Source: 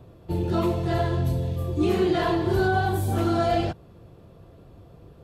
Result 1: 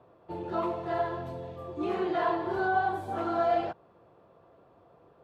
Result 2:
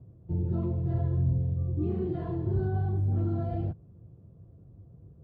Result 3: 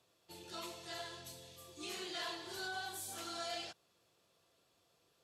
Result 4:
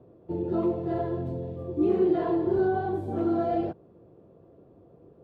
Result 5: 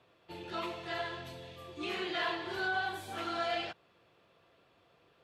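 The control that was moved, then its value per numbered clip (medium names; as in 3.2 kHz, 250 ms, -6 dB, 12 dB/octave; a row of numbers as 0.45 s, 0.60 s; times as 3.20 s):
band-pass filter, frequency: 950 Hz, 110 Hz, 6.7 kHz, 380 Hz, 2.5 kHz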